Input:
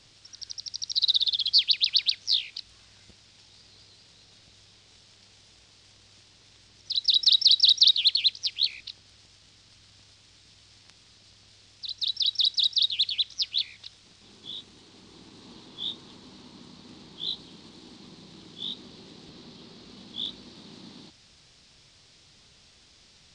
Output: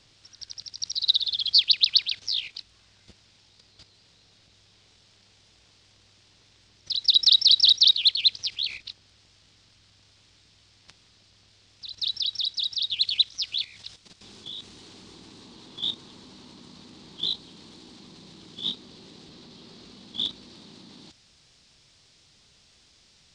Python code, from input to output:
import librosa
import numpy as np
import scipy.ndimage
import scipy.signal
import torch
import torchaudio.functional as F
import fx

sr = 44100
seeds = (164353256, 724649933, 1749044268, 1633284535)

y = fx.high_shelf(x, sr, hz=5800.0, db=fx.steps((0.0, -4.5), (13.01, 3.0)))
y = fx.level_steps(y, sr, step_db=11)
y = y * 10.0 ** (6.5 / 20.0)